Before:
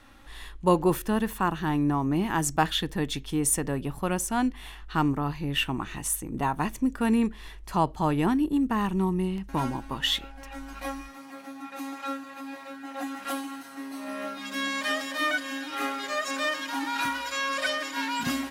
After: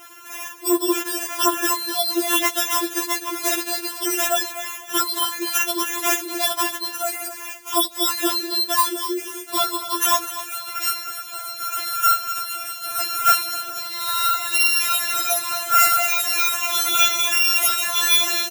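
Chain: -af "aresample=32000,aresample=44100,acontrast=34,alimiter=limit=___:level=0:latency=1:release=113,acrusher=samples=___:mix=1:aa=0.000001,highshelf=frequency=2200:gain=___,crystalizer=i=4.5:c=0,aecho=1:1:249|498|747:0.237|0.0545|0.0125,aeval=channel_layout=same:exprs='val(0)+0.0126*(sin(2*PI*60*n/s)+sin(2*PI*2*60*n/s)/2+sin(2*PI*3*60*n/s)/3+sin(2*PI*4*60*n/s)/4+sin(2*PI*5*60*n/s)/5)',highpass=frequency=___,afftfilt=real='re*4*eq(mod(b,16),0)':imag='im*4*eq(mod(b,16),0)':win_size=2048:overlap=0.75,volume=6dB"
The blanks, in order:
-15dB, 10, -5.5, 380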